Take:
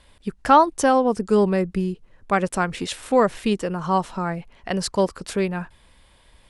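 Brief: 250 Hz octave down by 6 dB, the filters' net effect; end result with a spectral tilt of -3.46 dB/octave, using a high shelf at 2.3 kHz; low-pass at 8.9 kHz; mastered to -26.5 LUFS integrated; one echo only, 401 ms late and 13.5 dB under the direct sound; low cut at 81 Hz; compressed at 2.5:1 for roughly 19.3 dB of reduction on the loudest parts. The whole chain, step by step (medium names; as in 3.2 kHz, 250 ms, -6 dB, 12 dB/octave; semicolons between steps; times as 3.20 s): high-pass 81 Hz; low-pass 8.9 kHz; peaking EQ 250 Hz -8.5 dB; treble shelf 2.3 kHz +7 dB; compression 2.5:1, threshold -39 dBFS; delay 401 ms -13.5 dB; trim +10.5 dB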